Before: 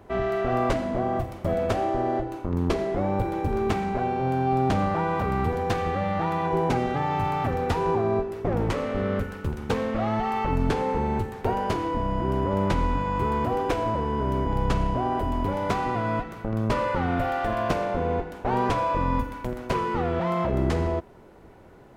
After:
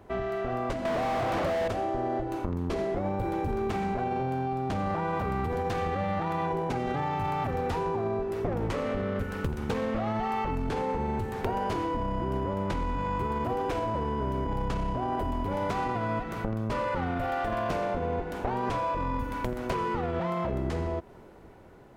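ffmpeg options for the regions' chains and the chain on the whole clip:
-filter_complex "[0:a]asettb=1/sr,asplit=3[a][b][c];[a]atrim=end=0.854[d];[b]atrim=start=0.85:end=1.68,asetpts=PTS-STARTPTS,afade=t=in:d=0.004:c=qsin,afade=t=out:st=0.826:d=0.004:c=qsin,highpass=52,bandreject=f=370:w=12,asplit=2[e][f];[f]highpass=f=720:p=1,volume=43dB,asoftclip=type=tanh:threshold=-14dB[g];[e][g]amix=inputs=2:normalize=0,lowpass=f=1.3k:p=1,volume=-6dB[h];[c]atrim=start=1.676[i];[d][h]acrossfade=d=0.004:c1=hsin:c2=qsin[j];[j][i]acrossfade=d=0.004:c1=qsin:c2=hsin,dynaudnorm=f=270:g=13:m=10.5dB,alimiter=limit=-10dB:level=0:latency=1:release=24,acompressor=threshold=-25dB:ratio=5,volume=-2.5dB"

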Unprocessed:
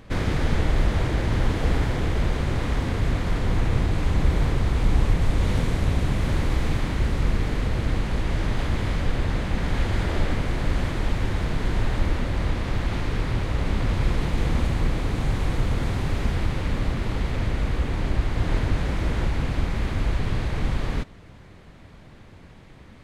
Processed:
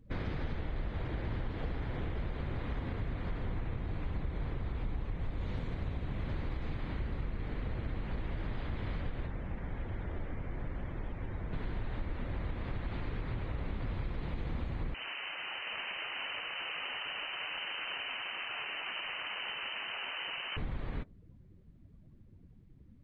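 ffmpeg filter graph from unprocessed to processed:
-filter_complex "[0:a]asettb=1/sr,asplit=3[a][b][c];[a]atrim=end=9.264[d];[b]atrim=start=9.26:end=11.53,asetpts=PTS-STARTPTS,afade=t=in:d=0.004:c=qsin,afade=t=out:st=2.266:d=0.004:c=qsin,lowpass=6.6k,acrossover=split=140|450|920[e][f][g][h];[e]acompressor=threshold=-26dB:ratio=3[i];[f]acompressor=threshold=-38dB:ratio=3[j];[g]acompressor=threshold=-44dB:ratio=3[k];[h]acompressor=threshold=-42dB:ratio=3[l];[i][j][k][l]amix=inputs=4:normalize=0[m];[c]atrim=start=11.526[n];[d][m]acrossfade=d=0.004:c1=hsin:c2=qsin[o];[o][n]acrossfade=d=0.004:c1=qsin:c2=hsin,asettb=1/sr,asplit=3[p][q][r];[p]atrim=end=14.944[s];[q]atrim=start=14.94:end=20.57,asetpts=PTS-STARTPTS,afade=t=in:d=0.004:c=qsin,afade=t=out:st=5.626:d=0.004:c=qsin,aeval=exprs='(mod(18.8*val(0)+1,2)-1)/18.8':c=same,aecho=1:1:722:0.596,atrim=end_sample=248283,lowpass=f=2.6k:t=q:w=0.5098,lowpass=f=2.6k:t=q:w=0.6013,lowpass=f=2.6k:t=q:w=0.9,lowpass=f=2.6k:t=q:w=2.563,afreqshift=-3100[t];[r]atrim=start=20.566[u];[s][t]acrossfade=d=0.004:c1=hsin:c2=qsin[v];[v][u]acrossfade=d=0.004:c1=qsin:c2=hsin,afftdn=nr=21:nf=-42,acompressor=threshold=-23dB:ratio=6,volume=-9dB"

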